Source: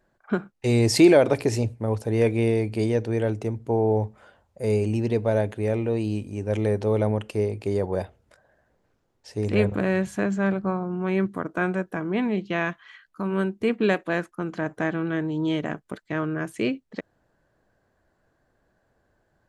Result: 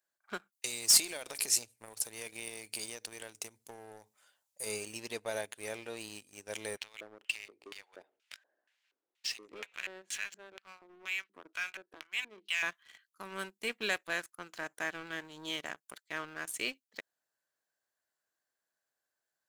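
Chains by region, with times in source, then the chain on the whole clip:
0.52–4.66 compressor 5:1, threshold -26 dBFS + high shelf 3800 Hz +8 dB
6.77–12.63 compressor 2:1, threshold -47 dBFS + LFO band-pass square 2.1 Hz 320–2700 Hz + overdrive pedal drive 28 dB, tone 7800 Hz, clips at -13 dBFS
whole clip: differentiator; sample leveller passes 2

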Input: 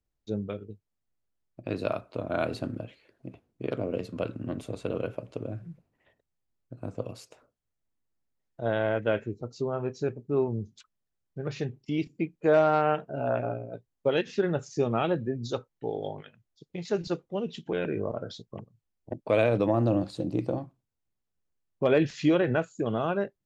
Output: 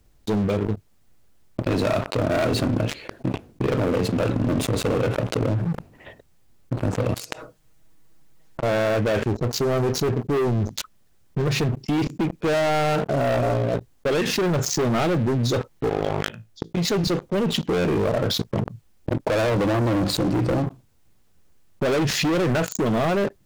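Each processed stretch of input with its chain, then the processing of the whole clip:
7.14–8.63 comb 6.3 ms, depth 72% + compressor 10:1, threshold -54 dBFS
15.89–16.77 compressor, threshold -37 dBFS + resonator 55 Hz, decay 0.21 s, mix 70%
whole clip: low shelf 410 Hz +3 dB; sample leveller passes 5; fast leveller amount 70%; gain -8 dB

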